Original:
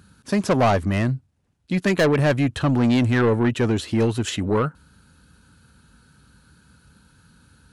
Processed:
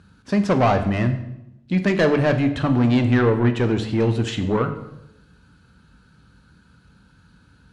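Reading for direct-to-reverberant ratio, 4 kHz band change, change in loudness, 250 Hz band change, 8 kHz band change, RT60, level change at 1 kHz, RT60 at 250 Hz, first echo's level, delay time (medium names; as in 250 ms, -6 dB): 7.0 dB, -1.5 dB, +1.0 dB, +1.0 dB, no reading, 0.85 s, +1.0 dB, 1.1 s, no echo, no echo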